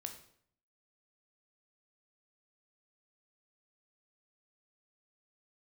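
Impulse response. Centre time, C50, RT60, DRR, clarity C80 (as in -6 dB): 15 ms, 9.5 dB, 0.60 s, 5.0 dB, 12.5 dB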